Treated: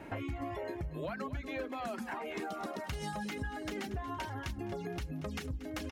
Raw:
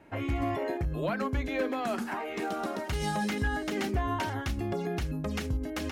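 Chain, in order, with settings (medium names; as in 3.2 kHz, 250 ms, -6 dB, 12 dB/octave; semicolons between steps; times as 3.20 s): reverb removal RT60 0.79 s; on a send: feedback delay 233 ms, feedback 40%, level -15 dB; on the sum: compression 4:1, threshold -48 dBFS, peak gain reduction 18.5 dB; trim +8.5 dB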